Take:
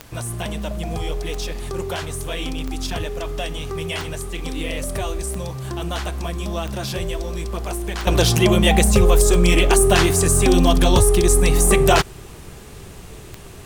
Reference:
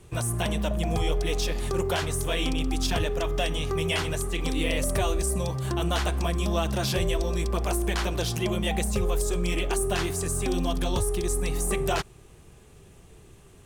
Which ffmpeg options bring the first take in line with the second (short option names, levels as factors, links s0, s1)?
-af "adeclick=t=4,agate=range=0.0891:threshold=0.0355,asetnsamples=n=441:p=0,asendcmd='8.07 volume volume -12dB',volume=1"